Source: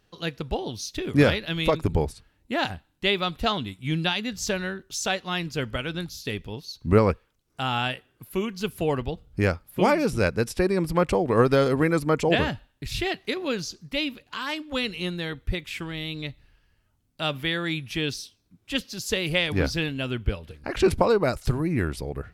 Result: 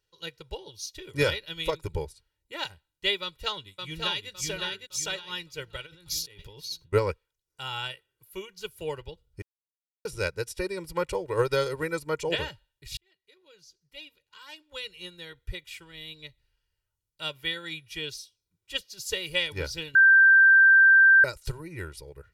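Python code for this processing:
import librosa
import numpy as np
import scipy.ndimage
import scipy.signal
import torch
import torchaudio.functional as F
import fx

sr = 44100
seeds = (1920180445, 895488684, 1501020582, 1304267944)

y = fx.echo_throw(x, sr, start_s=3.22, length_s=1.08, ms=560, feedback_pct=40, wet_db=-2.5)
y = fx.over_compress(y, sr, threshold_db=-39.0, ratio=-1.0, at=(5.85, 6.92), fade=0.02)
y = fx.edit(y, sr, fx.silence(start_s=9.42, length_s=0.63),
    fx.fade_in_span(start_s=12.97, length_s=2.56),
    fx.bleep(start_s=19.95, length_s=1.29, hz=1570.0, db=-10.5), tone=tone)
y = fx.high_shelf(y, sr, hz=2100.0, db=10.5)
y = y + 0.94 * np.pad(y, (int(2.1 * sr / 1000.0), 0))[:len(y)]
y = fx.upward_expand(y, sr, threshold_db=-33.0, expansion=1.5)
y = y * librosa.db_to_amplitude(-8.0)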